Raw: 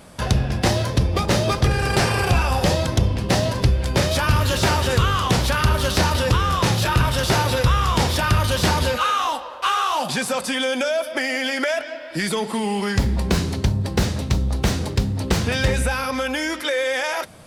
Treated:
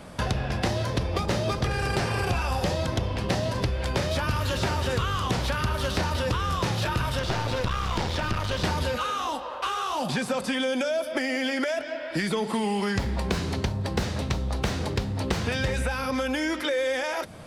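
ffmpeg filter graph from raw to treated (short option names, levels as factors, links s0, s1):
-filter_complex "[0:a]asettb=1/sr,asplit=3[s0][s1][s2];[s0]atrim=end=7.194[s3];[s1]atrim=start=7.19:end=8.64,asetpts=PTS-STARTPTS,afade=t=in:d=0.004:c=qsin,afade=t=out:st=1.446:d=0.004:c=qsin,acrossover=split=6500[s4][s5];[s5]acompressor=threshold=0.00501:ratio=4:attack=1:release=60[s6];[s4][s6]amix=inputs=2:normalize=0,bandreject=f=1100:w=26,aeval=exprs='clip(val(0),-1,0.0596)':c=same[s7];[s2]atrim=start=8.636[s8];[s3][s7]acrossfade=d=0.004:c1=hsin:c2=qsin[s9];[s9][s8]acrossfade=d=0.004:c1=qsin:c2=hsin,highshelf=f=5700:g=-9.5,acrossover=split=460|4300[s10][s11][s12];[s10]acompressor=threshold=0.0355:ratio=4[s13];[s11]acompressor=threshold=0.0251:ratio=4[s14];[s12]acompressor=threshold=0.00794:ratio=4[s15];[s13][s14][s15]amix=inputs=3:normalize=0,volume=1.26"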